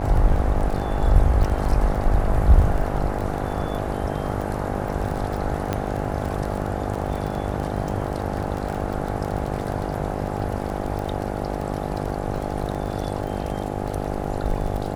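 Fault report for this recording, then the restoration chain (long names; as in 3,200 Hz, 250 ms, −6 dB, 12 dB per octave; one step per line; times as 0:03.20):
mains buzz 50 Hz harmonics 17 −28 dBFS
surface crackle 20 per second −26 dBFS
0:05.73: click −10 dBFS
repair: click removal
hum removal 50 Hz, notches 17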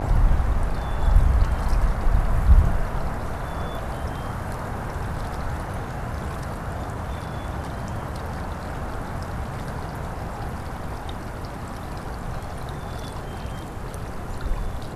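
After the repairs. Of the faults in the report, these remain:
none of them is left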